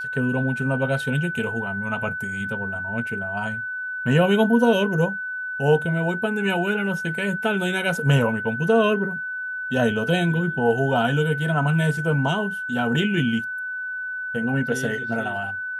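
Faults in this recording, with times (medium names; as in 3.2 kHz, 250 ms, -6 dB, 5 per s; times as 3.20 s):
whine 1.5 kHz -27 dBFS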